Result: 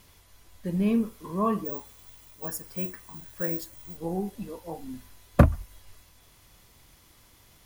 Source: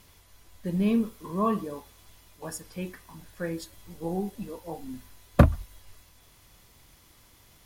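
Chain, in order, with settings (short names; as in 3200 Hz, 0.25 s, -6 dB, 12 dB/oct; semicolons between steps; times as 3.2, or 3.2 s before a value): dynamic EQ 3700 Hz, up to -5 dB, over -57 dBFS, Q 2.3; 1.65–3.97 careless resampling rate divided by 2×, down none, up zero stuff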